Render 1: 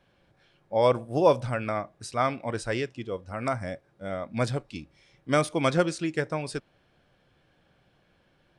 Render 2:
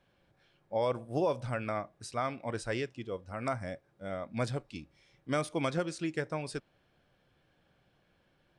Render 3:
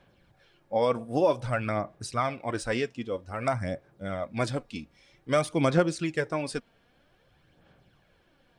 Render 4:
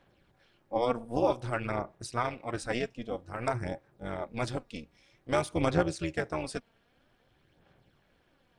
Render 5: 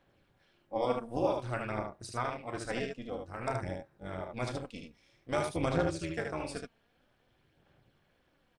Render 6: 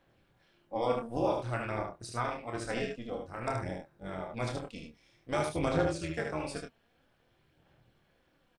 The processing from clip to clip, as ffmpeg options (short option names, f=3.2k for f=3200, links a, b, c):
-af "alimiter=limit=-15.5dB:level=0:latency=1:release=225,volume=-5dB"
-af "aphaser=in_gain=1:out_gain=1:delay=4.4:decay=0.43:speed=0.52:type=sinusoidal,volume=5dB"
-af "tremolo=f=240:d=0.824"
-af "aecho=1:1:32|75:0.316|0.596,volume=-4.5dB"
-filter_complex "[0:a]asplit=2[a][b];[b]adelay=26,volume=-6.5dB[c];[a][c]amix=inputs=2:normalize=0"